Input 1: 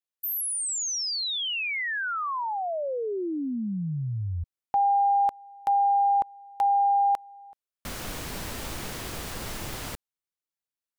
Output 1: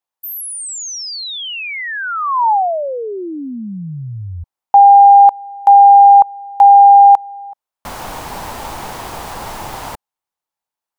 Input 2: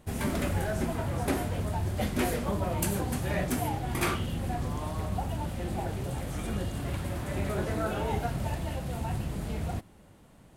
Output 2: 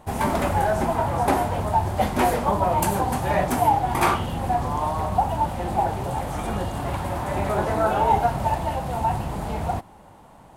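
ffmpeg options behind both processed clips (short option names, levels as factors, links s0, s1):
-af "equalizer=f=870:t=o:w=0.96:g=14.5,volume=1.5"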